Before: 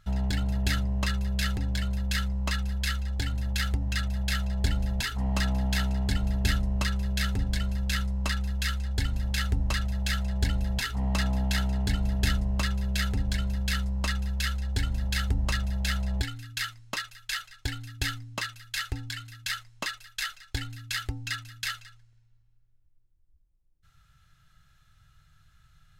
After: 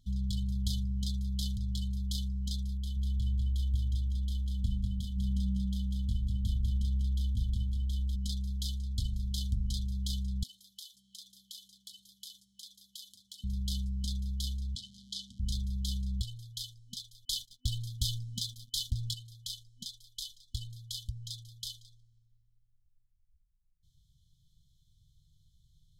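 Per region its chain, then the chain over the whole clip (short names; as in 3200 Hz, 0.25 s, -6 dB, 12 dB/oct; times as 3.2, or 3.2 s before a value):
2.77–8.16 resonant high shelf 3000 Hz -11 dB, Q 1.5 + feedback echo 0.196 s, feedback 36%, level -4 dB
10.43–13.44 Chebyshev high-pass 1200 Hz + bell 12000 Hz +5 dB 0.6 oct + compressor 2:1, threshold -40 dBFS
14.75–15.4 zero-crossing step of -34.5 dBFS + BPF 410–6700 Hz
17.25–19.14 expander -47 dBFS + sample leveller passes 2
whole clip: high shelf 11000 Hz -3.5 dB; FFT band-reject 250–3000 Hz; gain -5 dB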